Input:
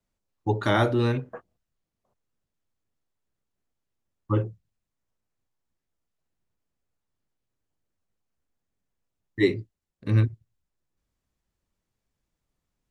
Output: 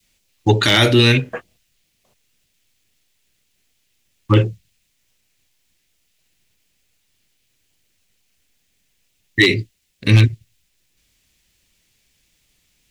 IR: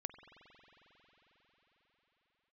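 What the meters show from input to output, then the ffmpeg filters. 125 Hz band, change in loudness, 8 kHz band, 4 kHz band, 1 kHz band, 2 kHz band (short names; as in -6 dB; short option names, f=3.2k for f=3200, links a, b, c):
+10.0 dB, +10.0 dB, n/a, +20.5 dB, +5.5 dB, +14.5 dB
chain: -af "adynamicequalizer=threshold=0.0178:dfrequency=780:dqfactor=1:tfrequency=780:tqfactor=1:attack=5:release=100:ratio=0.375:range=2.5:mode=cutabove:tftype=bell,aeval=exprs='0.237*(abs(mod(val(0)/0.237+3,4)-2)-1)':c=same,acontrast=36,highshelf=f=1.7k:t=q:w=1.5:g=12,alimiter=level_in=7.5dB:limit=-1dB:release=50:level=0:latency=1,volume=-1dB"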